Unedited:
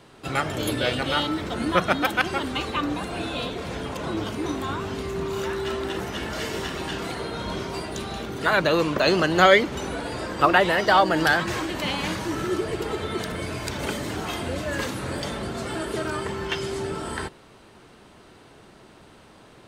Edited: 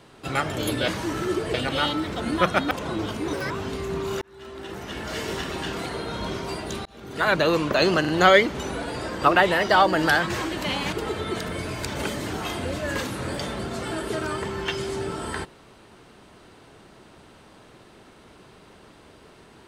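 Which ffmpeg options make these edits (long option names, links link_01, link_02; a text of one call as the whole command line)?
ffmpeg -i in.wav -filter_complex "[0:a]asplit=11[link_01][link_02][link_03][link_04][link_05][link_06][link_07][link_08][link_09][link_10][link_11];[link_01]atrim=end=0.882[link_12];[link_02]atrim=start=12.098:end=12.762[link_13];[link_03]atrim=start=0.878:end=2.052[link_14];[link_04]atrim=start=3.888:end=4.514[link_15];[link_05]atrim=start=4.51:end=4.76,asetpts=PTS-STARTPTS,asetrate=63063,aresample=44100[link_16];[link_06]atrim=start=4.756:end=5.47,asetpts=PTS-STARTPTS,afade=type=out:start_time=0.71:duration=0.004:curve=hsin[link_17];[link_07]atrim=start=5.47:end=8.11,asetpts=PTS-STARTPTS,afade=type=in:duration=1.05,afade=type=out:start_time=2.636:duration=0.004:curve=hsin[link_18];[link_08]atrim=start=8.11:end=9.302,asetpts=PTS-STARTPTS,afade=type=in:duration=0.45[link_19];[link_09]atrim=start=9.258:end=9.302[link_20];[link_10]atrim=start=9.258:end=12.102[link_21];[link_11]atrim=start=12.758[link_22];[link_12][link_13]acrossfade=duration=0.004:curve1=hsin:curve2=hsin[link_23];[link_23][link_14]acrossfade=duration=0.004:curve1=hsin:curve2=hsin[link_24];[link_24][link_15]acrossfade=duration=0.004:curve1=hsin:curve2=hsin[link_25];[link_25][link_16]acrossfade=duration=0.004:curve1=hsin:curve2=hsin[link_26];[link_17][link_18][link_19]concat=n=3:v=0:a=1[link_27];[link_26][link_27]acrossfade=duration=0.004:curve1=hsin:curve2=hsin[link_28];[link_28][link_20]acrossfade=duration=0.004:curve1=hsin:curve2=hsin[link_29];[link_29][link_21]acrossfade=duration=0.004:curve1=hsin:curve2=hsin[link_30];[link_30][link_22]acrossfade=duration=0.004:curve1=hsin:curve2=hsin" out.wav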